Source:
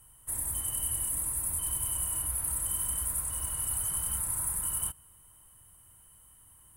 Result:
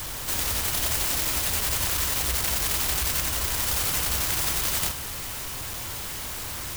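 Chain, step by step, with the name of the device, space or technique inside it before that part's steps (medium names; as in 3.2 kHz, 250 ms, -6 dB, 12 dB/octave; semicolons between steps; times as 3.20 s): early CD player with a faulty converter (jump at every zero crossing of -31.5 dBFS; sampling jitter); trim +4.5 dB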